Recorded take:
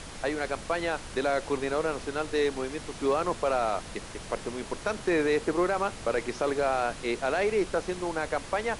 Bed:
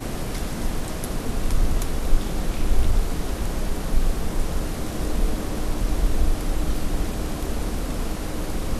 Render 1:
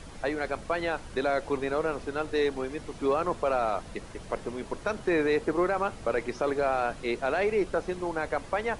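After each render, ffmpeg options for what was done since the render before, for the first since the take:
-af "afftdn=nr=8:nf=-42"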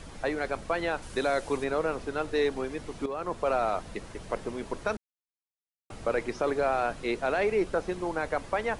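-filter_complex "[0:a]asettb=1/sr,asplit=3[a][b][c];[a]atrim=end=1.024[d];[b]atrim=start=1.02:end=1.64,asetpts=PTS-STARTPTS,afade=t=in:d=0.004:c=qsin,afade=t=out:st=0.616:d=0.004:c=qsin,aemphasis=mode=production:type=cd[e];[c]atrim=start=1.636[f];[d][e]acrossfade=d=0.004:c1=hsin:c2=qsin[g];[g][f]acrossfade=d=0.004:c1=qsin:c2=hsin,asplit=4[h][i][j][k];[h]atrim=end=3.06,asetpts=PTS-STARTPTS,afade=t=out:st=3.056:d=0.004:c=hsin:silence=0.237137[l];[i]atrim=start=3.06:end=4.97,asetpts=PTS-STARTPTS,afade=t=in:d=0.43:silence=0.237137,afade=t=out:st=1.906:d=0.004:c=hsin[m];[j]atrim=start=4.97:end=5.9,asetpts=PTS-STARTPTS,volume=0[n];[k]atrim=start=5.9,asetpts=PTS-STARTPTS,afade=t=in:d=0.004:c=hsin[o];[l][m][n][o]concat=n=4:v=0:a=1"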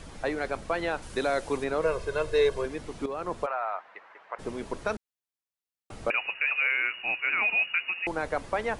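-filter_complex "[0:a]asettb=1/sr,asplit=3[a][b][c];[a]atrim=end=1.824[d];[b]atrim=start=1.82:end=2.66,asetpts=PTS-STARTPTS,afade=t=in:d=0.004:c=qsin,afade=t=out:st=0.836:d=0.004:c=qsin,aecho=1:1:1.9:0.86,atrim=end_sample=37044[e];[c]atrim=start=2.656[f];[d][e]acrossfade=d=0.004:c1=hsin:c2=qsin[g];[g][f]acrossfade=d=0.004:c1=qsin:c2=hsin,asplit=3[h][i][j];[h]afade=t=out:st=3.45:d=0.02[k];[i]asuperpass=centerf=1300:order=4:qfactor=0.94,afade=t=in:st=3.45:d=0.02,afade=t=out:st=4.38:d=0.02[l];[j]afade=t=in:st=4.38:d=0.02[m];[k][l][m]amix=inputs=3:normalize=0,asettb=1/sr,asplit=3[n][o][p];[n]atrim=end=6.104[q];[o]atrim=start=6.1:end=8.07,asetpts=PTS-STARTPTS,afade=t=in:d=0.004:c=qsin,afade=t=out:st=1.966:d=0.004:c=qsin,lowpass=f=2.5k:t=q:w=0.5098,lowpass=f=2.5k:t=q:w=0.6013,lowpass=f=2.5k:t=q:w=0.9,lowpass=f=2.5k:t=q:w=2.563,afreqshift=-2900[r];[p]atrim=start=8.066[s];[q][r]acrossfade=d=0.004:c1=hsin:c2=qsin[t];[t][s]acrossfade=d=0.004:c1=qsin:c2=hsin"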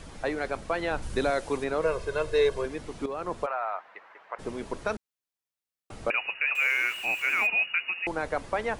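-filter_complex "[0:a]asettb=1/sr,asplit=3[a][b][c];[a]atrim=end=0.914[d];[b]atrim=start=0.91:end=1.31,asetpts=PTS-STARTPTS,afade=t=in:d=0.004:c=qsin,afade=t=out:st=0.396:d=0.004:c=qsin,lowshelf=f=180:g=10.5[e];[c]atrim=start=1.306[f];[d][e]acrossfade=d=0.004:c1=hsin:c2=qsin[g];[g][f]acrossfade=d=0.004:c1=qsin:c2=hsin,asettb=1/sr,asplit=3[h][i][j];[h]atrim=end=6.554[k];[i]atrim=start=6.55:end=7.47,asetpts=PTS-STARTPTS,afade=t=in:d=0.004:c=qsin,afade=t=out:st=0.916:d=0.004:c=qsin,aeval=exprs='val(0)+0.5*0.0133*sgn(val(0))':c=same[l];[j]atrim=start=7.466[m];[k][l]acrossfade=d=0.004:c1=hsin:c2=qsin[n];[n][m]acrossfade=d=0.004:c1=qsin:c2=hsin"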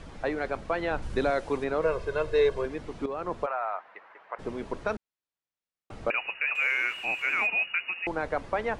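-af "aemphasis=mode=reproduction:type=50fm"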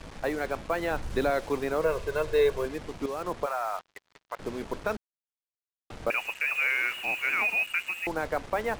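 -af "acrusher=bits=6:mix=0:aa=0.5"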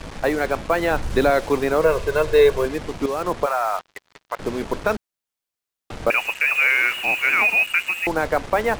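-af "volume=9dB"

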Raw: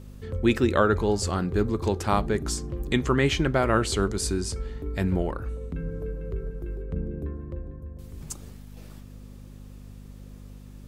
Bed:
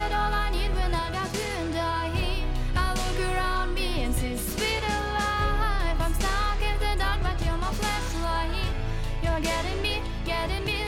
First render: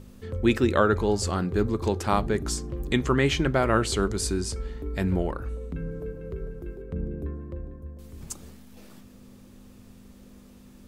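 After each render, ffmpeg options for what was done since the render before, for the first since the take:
-af "bandreject=f=50:t=h:w=4,bandreject=f=100:t=h:w=4,bandreject=f=150:t=h:w=4"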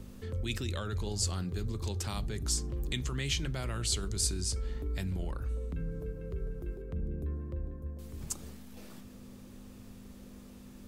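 -filter_complex "[0:a]acrossover=split=140|3000[a][b][c];[b]acompressor=threshold=-47dB:ratio=2[d];[a][d][c]amix=inputs=3:normalize=0,acrossover=split=2200[e][f];[e]alimiter=level_in=4.5dB:limit=-24dB:level=0:latency=1:release=10,volume=-4.5dB[g];[g][f]amix=inputs=2:normalize=0"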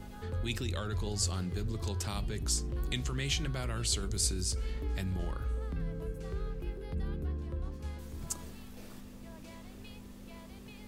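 -filter_complex "[1:a]volume=-26.5dB[a];[0:a][a]amix=inputs=2:normalize=0"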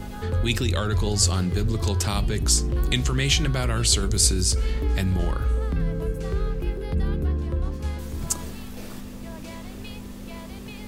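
-af "volume=11.5dB"

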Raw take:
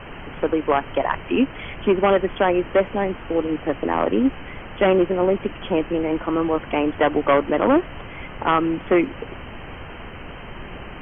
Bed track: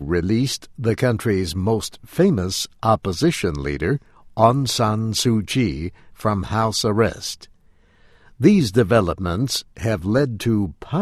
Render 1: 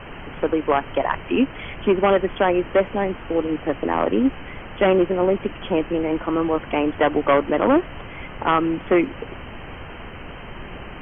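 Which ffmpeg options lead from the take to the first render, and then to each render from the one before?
-af anull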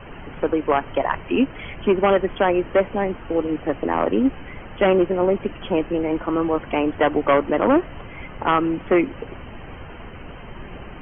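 -af "afftdn=nr=6:nf=-37"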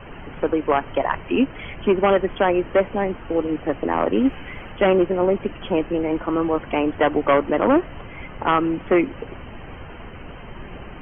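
-filter_complex "[0:a]asettb=1/sr,asplit=3[a][b][c];[a]atrim=end=4.154[d];[b]atrim=start=4.15:end=4.72,asetpts=PTS-STARTPTS,afade=t=in:d=0.004:c=qsin,afade=t=out:st=0.566:d=0.004:c=qsin,highshelf=f=2.2k:g=8[e];[c]atrim=start=4.716[f];[d][e]acrossfade=d=0.004:c1=hsin:c2=qsin[g];[g][f]acrossfade=d=0.004:c1=qsin:c2=hsin"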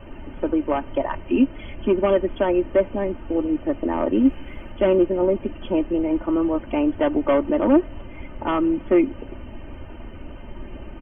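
-af "equalizer=f=1.7k:w=0.5:g=-9.5,aecho=1:1:3.3:0.58"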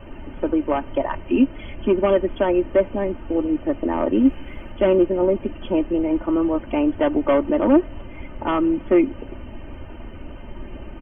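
-af "volume=1dB"

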